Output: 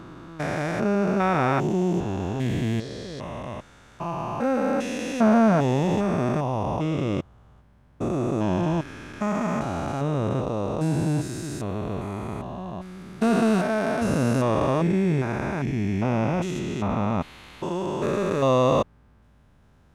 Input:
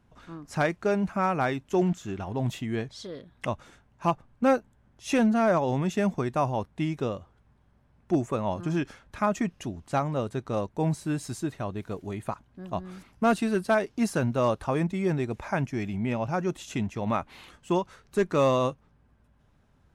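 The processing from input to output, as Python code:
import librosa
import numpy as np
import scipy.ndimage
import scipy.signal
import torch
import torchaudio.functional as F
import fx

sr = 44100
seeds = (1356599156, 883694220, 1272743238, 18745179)

y = fx.spec_steps(x, sr, hold_ms=400)
y = fx.high_shelf(y, sr, hz=fx.line((16.58, 5800.0), (17.2, 8600.0)), db=-10.0, at=(16.58, 17.2), fade=0.02)
y = y * librosa.db_to_amplitude(8.0)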